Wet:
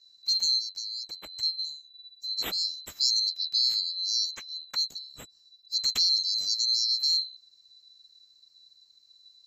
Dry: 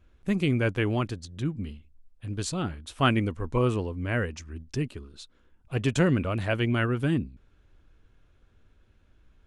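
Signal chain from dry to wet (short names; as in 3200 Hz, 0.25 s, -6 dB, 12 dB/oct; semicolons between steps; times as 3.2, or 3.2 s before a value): band-swap scrambler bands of 4000 Hz; in parallel at +1.5 dB: limiter -17 dBFS, peak gain reduction 10 dB; 0.59–1.43 on the sum: compressor 4:1, threshold -28 dBFS, peak gain reduction 10.5 dB; gain -7 dB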